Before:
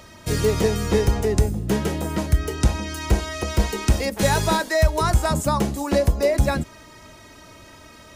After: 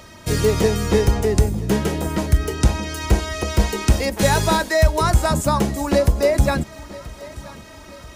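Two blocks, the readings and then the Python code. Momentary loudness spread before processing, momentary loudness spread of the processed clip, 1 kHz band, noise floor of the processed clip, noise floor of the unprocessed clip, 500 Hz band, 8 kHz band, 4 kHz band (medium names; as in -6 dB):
5 LU, 17 LU, +2.5 dB, -42 dBFS, -46 dBFS, +2.5 dB, +2.5 dB, +2.5 dB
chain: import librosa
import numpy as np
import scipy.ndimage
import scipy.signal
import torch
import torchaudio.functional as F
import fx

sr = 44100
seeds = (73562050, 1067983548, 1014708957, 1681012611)

y = fx.echo_feedback(x, sr, ms=981, feedback_pct=48, wet_db=-20.0)
y = y * librosa.db_to_amplitude(2.5)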